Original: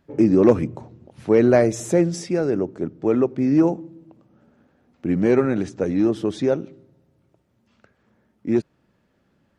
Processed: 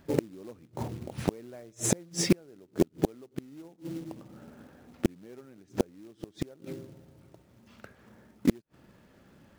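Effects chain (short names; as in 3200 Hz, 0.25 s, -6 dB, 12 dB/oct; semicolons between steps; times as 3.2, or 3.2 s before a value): short-mantissa float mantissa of 2-bit; flipped gate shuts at -15 dBFS, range -38 dB; gain +7 dB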